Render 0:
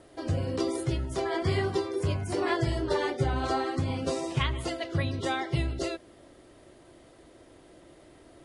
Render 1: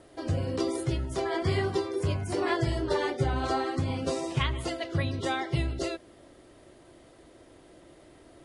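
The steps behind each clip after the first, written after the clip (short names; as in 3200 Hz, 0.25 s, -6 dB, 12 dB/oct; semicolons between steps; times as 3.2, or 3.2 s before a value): nothing audible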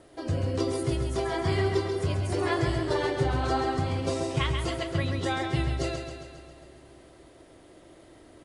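feedback echo 0.135 s, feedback 59%, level -6.5 dB; on a send at -20 dB: reverb RT60 4.0 s, pre-delay 73 ms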